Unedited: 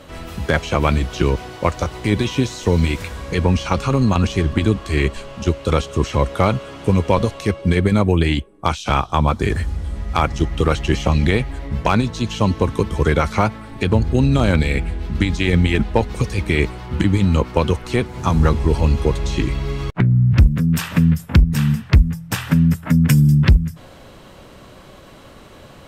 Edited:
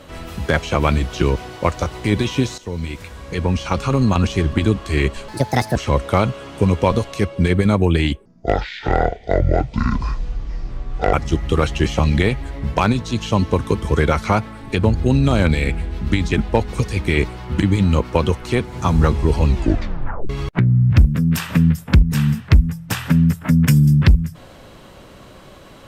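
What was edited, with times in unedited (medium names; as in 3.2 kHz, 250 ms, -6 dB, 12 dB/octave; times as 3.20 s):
2.58–3.98 s: fade in, from -13.5 dB
5.28–6.02 s: speed 156%
8.52–10.22 s: speed 59%
15.41–15.74 s: delete
18.87 s: tape stop 0.84 s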